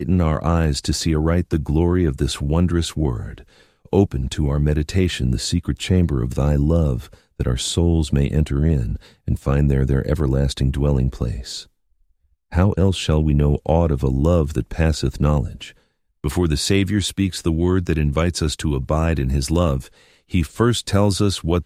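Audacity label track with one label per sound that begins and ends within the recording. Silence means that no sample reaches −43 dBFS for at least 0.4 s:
12.520000	15.720000	sound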